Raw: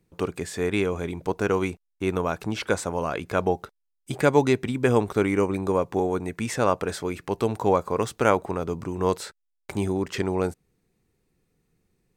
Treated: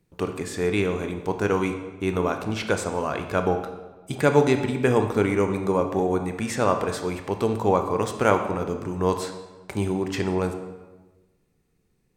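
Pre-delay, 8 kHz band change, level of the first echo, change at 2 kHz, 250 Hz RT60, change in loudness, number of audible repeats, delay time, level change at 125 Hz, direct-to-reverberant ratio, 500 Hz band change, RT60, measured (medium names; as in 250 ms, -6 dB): 20 ms, +0.5 dB, no echo, +1.0 dB, 1.3 s, +1.0 dB, no echo, no echo, +1.5 dB, 6.0 dB, +1.0 dB, 1.2 s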